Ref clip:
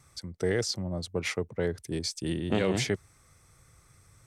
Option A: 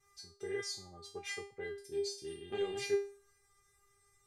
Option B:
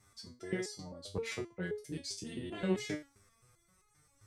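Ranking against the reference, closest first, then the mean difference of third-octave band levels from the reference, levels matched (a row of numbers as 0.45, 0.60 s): B, A; 5.5, 8.0 dB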